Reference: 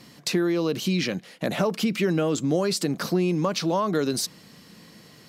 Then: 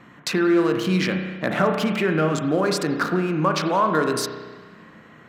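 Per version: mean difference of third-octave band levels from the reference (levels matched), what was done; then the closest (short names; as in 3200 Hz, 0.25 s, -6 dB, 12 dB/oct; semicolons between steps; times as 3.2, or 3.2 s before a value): 6.5 dB: Wiener smoothing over 9 samples; bell 1400 Hz +10.5 dB 1.2 oct; spring tank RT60 1.4 s, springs 32 ms, chirp 65 ms, DRR 4.5 dB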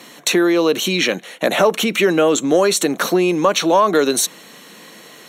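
4.5 dB: HPF 370 Hz 12 dB/oct; in parallel at -7 dB: overloaded stage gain 19.5 dB; on the sum: Butterworth band-stop 4900 Hz, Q 4; gain +9 dB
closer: second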